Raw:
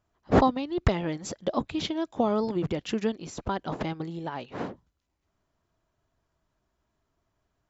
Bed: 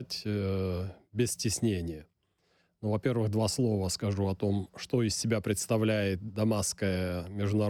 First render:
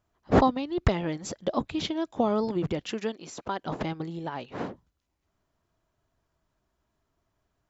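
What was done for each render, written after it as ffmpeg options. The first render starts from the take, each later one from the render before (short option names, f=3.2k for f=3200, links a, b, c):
-filter_complex "[0:a]asettb=1/sr,asplit=3[a][b][c];[a]atrim=end=2.874[d];[b]atrim=start=2.87:end=3.64,asetpts=PTS-STARTPTS,afade=t=in:d=0.004:c=qsin,afade=t=out:st=0.766:d=0.004:c=qsin,highpass=f=370:p=1[e];[c]atrim=start=3.636[f];[d][e]acrossfade=d=0.004:c1=hsin:c2=qsin[g];[g][f]acrossfade=d=0.004:c1=qsin:c2=hsin"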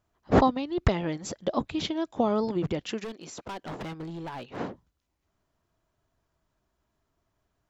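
-filter_complex "[0:a]asettb=1/sr,asplit=3[a][b][c];[a]atrim=end=3.044[d];[b]atrim=start=3.04:end=4.57,asetpts=PTS-STARTPTS,afade=t=in:d=0.004:c=qsin,afade=t=out:st=1.526:d=0.004:c=qsin,volume=33.5dB,asoftclip=hard,volume=-33.5dB[e];[c]atrim=start=4.566[f];[d][e]acrossfade=d=0.004:c1=hsin:c2=qsin[g];[g][f]acrossfade=d=0.004:c1=qsin:c2=hsin"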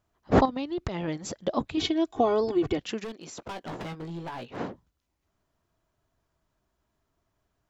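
-filter_complex "[0:a]asettb=1/sr,asplit=3[a][b][c];[a]atrim=end=0.454[d];[b]atrim=start=0.45:end=1.08,asetpts=PTS-STARTPTS,afade=t=in:d=0.004:c=qsin,afade=t=out:st=0.626:d=0.004:c=qsin,acompressor=threshold=-26dB:ratio=10:attack=3.2:release=140:knee=1:detection=peak[e];[c]atrim=start=1.076[f];[d][e]acrossfade=d=0.004:c1=hsin:c2=qsin[g];[g][f]acrossfade=d=0.004:c1=qsin:c2=hsin,asettb=1/sr,asplit=3[h][i][j];[h]atrim=end=1.774[k];[i]atrim=start=1.77:end=2.78,asetpts=PTS-STARTPTS,afade=t=in:d=0.004:c=qsin,afade=t=out:st=1.006:d=0.004:c=qsin,aecho=1:1:2.7:0.9,atrim=end_sample=44541[l];[j]atrim=start=2.776[m];[k][l]acrossfade=d=0.004:c1=hsin:c2=qsin[n];[n][m]acrossfade=d=0.004:c1=qsin:c2=hsin,asettb=1/sr,asplit=3[o][p][q];[o]atrim=end=3.404[r];[p]atrim=start=3.4:end=4.51,asetpts=PTS-STARTPTS,afade=t=in:d=0.004:c=qsin,afade=t=out:st=1.106:d=0.004:c=qsin,asplit=2[s][t];[t]adelay=17,volume=-7dB[u];[s][u]amix=inputs=2:normalize=0,atrim=end_sample=48951[v];[q]atrim=start=4.506[w];[r][v]acrossfade=d=0.004:c1=hsin:c2=qsin[x];[x][w]acrossfade=d=0.004:c1=qsin:c2=hsin"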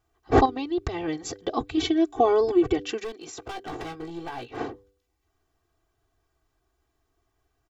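-af "aecho=1:1:2.6:0.89,bandreject=f=98.81:t=h:w=4,bandreject=f=197.62:t=h:w=4,bandreject=f=296.43:t=h:w=4,bandreject=f=395.24:t=h:w=4,bandreject=f=494.05:t=h:w=4"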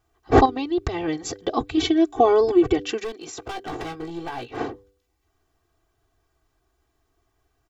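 -af "volume=3.5dB"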